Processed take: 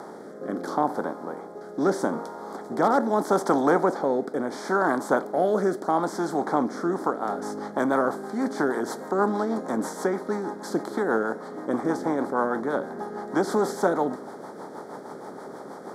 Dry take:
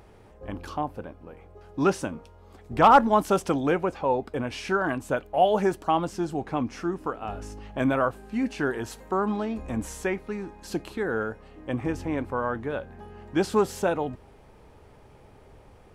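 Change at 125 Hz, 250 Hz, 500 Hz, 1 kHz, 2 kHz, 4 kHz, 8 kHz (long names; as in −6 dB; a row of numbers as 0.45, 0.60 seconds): −4.0, +2.0, +2.0, −0.5, +0.5, −4.0, +1.5 decibels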